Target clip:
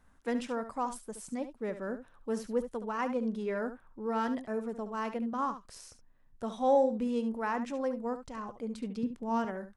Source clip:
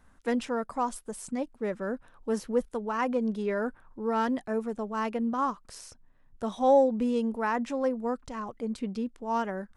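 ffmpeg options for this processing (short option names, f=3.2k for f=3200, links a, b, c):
-filter_complex "[0:a]asettb=1/sr,asplit=3[a][b][c];[a]atrim=end=9.034[d];[b]atrim=start=9.03:end=9.45,asetpts=PTS-STARTPTS,afade=t=in:d=0.004:c=qsin,afade=t=out:st=0.416:d=0.004:c=qsin,equalizer=f=130:w=0.8:g=13[e];[c]atrim=start=9.446[f];[d][e]acrossfade=d=0.004:c1=hsin:c2=qsin[g];[g][f]acrossfade=d=0.004:c1=qsin:c2=hsin,asplit=2[h][i];[i]aecho=0:1:71:0.282[j];[h][j]amix=inputs=2:normalize=0,volume=-4.5dB"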